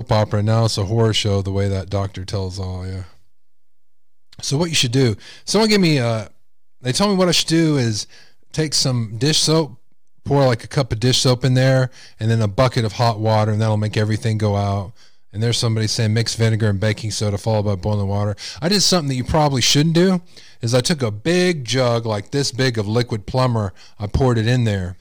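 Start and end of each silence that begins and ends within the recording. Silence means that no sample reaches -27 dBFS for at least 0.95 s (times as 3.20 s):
3.03–4.33 s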